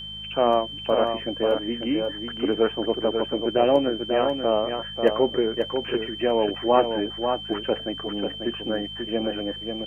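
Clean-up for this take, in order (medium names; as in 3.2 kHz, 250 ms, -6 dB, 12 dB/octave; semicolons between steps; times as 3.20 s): de-hum 52.4 Hz, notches 4; band-stop 3.1 kHz, Q 30; inverse comb 541 ms -6 dB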